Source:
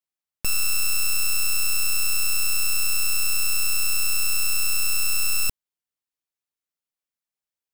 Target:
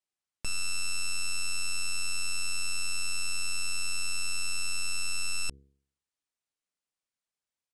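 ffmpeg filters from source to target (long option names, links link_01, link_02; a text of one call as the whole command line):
ffmpeg -i in.wav -af "bandreject=frequency=68.65:width_type=h:width=4,bandreject=frequency=137.3:width_type=h:width=4,bandreject=frequency=205.95:width_type=h:width=4,bandreject=frequency=274.6:width_type=h:width=4,bandreject=frequency=343.25:width_type=h:width=4,bandreject=frequency=411.9:width_type=h:width=4,bandreject=frequency=480.55:width_type=h:width=4,alimiter=level_in=2dB:limit=-24dB:level=0:latency=1,volume=-2dB,aresample=22050,aresample=44100" out.wav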